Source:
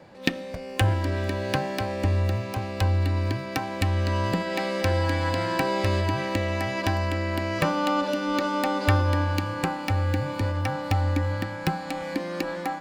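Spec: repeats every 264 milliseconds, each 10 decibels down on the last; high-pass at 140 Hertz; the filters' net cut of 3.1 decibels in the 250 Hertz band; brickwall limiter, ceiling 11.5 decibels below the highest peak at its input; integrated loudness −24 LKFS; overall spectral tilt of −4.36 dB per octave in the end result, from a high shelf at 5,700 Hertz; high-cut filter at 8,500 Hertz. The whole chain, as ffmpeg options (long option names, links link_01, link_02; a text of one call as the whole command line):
ffmpeg -i in.wav -af "highpass=140,lowpass=8500,equalizer=frequency=250:width_type=o:gain=-3.5,highshelf=frequency=5700:gain=-3.5,alimiter=limit=-18dB:level=0:latency=1,aecho=1:1:264|528|792|1056:0.316|0.101|0.0324|0.0104,volume=5.5dB" out.wav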